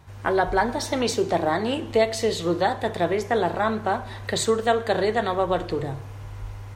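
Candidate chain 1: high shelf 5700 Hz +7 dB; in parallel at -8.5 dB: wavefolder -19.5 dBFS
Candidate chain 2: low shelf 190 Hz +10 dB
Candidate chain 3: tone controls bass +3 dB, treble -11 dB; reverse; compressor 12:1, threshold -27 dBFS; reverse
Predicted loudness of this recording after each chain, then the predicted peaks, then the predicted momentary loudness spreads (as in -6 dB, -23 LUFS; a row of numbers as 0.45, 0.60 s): -22.0, -22.5, -32.5 LUFS; -7.0, -6.0, -18.0 dBFS; 7, 6, 4 LU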